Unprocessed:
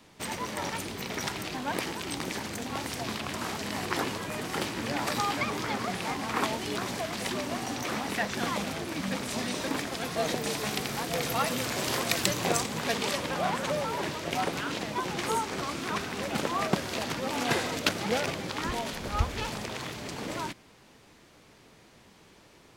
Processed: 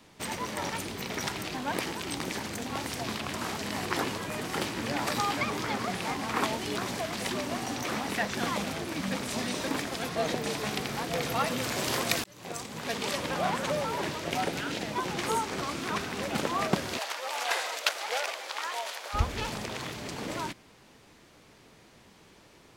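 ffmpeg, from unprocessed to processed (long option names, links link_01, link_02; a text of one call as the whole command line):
ffmpeg -i in.wav -filter_complex "[0:a]asettb=1/sr,asplit=3[link_01][link_02][link_03];[link_01]atrim=end=10.094[link_04];[link_02]atrim=start=10.09:end=11.63,asetpts=PTS-STARTPTS,afade=type=in:duration=0.004:curve=qsin,afade=type=out:start_time=1.536:duration=0.004:curve=qsin,highshelf=frequency=6100:gain=-6[link_05];[link_03]atrim=start=11.626[link_06];[link_04][link_05]acrossfade=duration=0.004:curve1=hsin:curve2=qsin[link_07];[link_07][link_06]acrossfade=duration=0.004:curve1=qsin:curve2=hsin,asettb=1/sr,asplit=3[link_08][link_09][link_10];[link_08]atrim=end=14.384[link_11];[link_09]atrim=start=14.38:end=14.87,asetpts=PTS-STARTPTS,afade=type=in:duration=0.004:curve=qsin,afade=type=out:start_time=0.486:duration=0.004:curve=qsin,equalizer=frequency=1100:width=5.4:gain=-9.5[link_12];[link_10]atrim=start=14.866[link_13];[link_11][link_12]acrossfade=duration=0.004:curve1=hsin:curve2=qsin[link_14];[link_14][link_13]acrossfade=duration=0.004:curve1=qsin:curve2=hsin,asplit=3[link_15][link_16][link_17];[link_15]afade=type=out:start_time=16.97:duration=0.02[link_18];[link_16]highpass=frequency=580:width=0.5412,highpass=frequency=580:width=1.3066,afade=type=in:start_time=16.97:duration=0.02,afade=type=out:start_time=19.13:duration=0.02[link_19];[link_17]afade=type=in:start_time=19.13:duration=0.02[link_20];[link_18][link_19][link_20]amix=inputs=3:normalize=0,asplit=2[link_21][link_22];[link_21]atrim=end=12.24,asetpts=PTS-STARTPTS,afade=type=out:start_time=12.236:duration=0.004:curve=hsin[link_23];[link_22]atrim=start=12.24,asetpts=PTS-STARTPTS,afade=type=in:duration=1.04[link_24];[link_23][link_24]concat=n=2:v=0:a=1" out.wav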